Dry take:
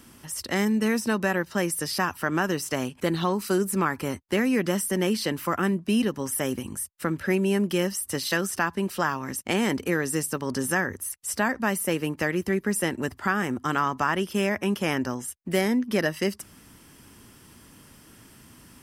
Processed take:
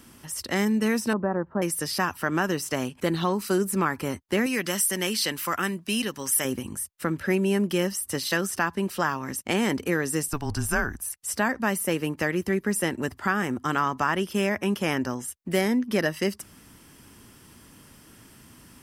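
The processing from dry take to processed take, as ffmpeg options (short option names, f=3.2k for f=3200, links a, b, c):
-filter_complex "[0:a]asettb=1/sr,asplit=3[a][b][c];[a]atrim=end=1.134[d];[b]atrim=start=1.13:end=1.62,asetpts=PTS-STARTPTS,afade=t=in:d=0.004:c=qsin,afade=t=out:st=0.486:d=0.004:c=qsin,lowpass=f=1.2k:w=0.5412,lowpass=f=1.2k:w=1.3066[e];[c]atrim=start=1.616[f];[d][e]acrossfade=d=0.004:c1=hsin:c2=qsin[g];[g][f]acrossfade=d=0.004:c1=qsin:c2=hsin,asettb=1/sr,asplit=3[h][i][j];[h]atrim=end=4.464[k];[i]atrim=start=4.46:end=6.45,asetpts=PTS-STARTPTS,afade=t=in:d=0.004:c=qsin,afade=t=out:st=1.986:d=0.004:c=qsin,tiltshelf=f=1.2k:g=-6.5[l];[j]atrim=start=6.446[m];[k][l]acrossfade=d=0.004:c1=hsin:c2=qsin[n];[n][m]acrossfade=d=0.004:c1=qsin:c2=hsin,asettb=1/sr,asplit=3[o][p][q];[o]atrim=end=10.284[r];[p]atrim=start=10.28:end=11.11,asetpts=PTS-STARTPTS,afade=t=in:d=0.004:c=qsin,afade=t=out:st=0.826:d=0.004:c=qsin,afreqshift=-150[s];[q]atrim=start=11.106[t];[r][s]acrossfade=d=0.004:c1=hsin:c2=qsin[u];[u][t]acrossfade=d=0.004:c1=qsin:c2=hsin"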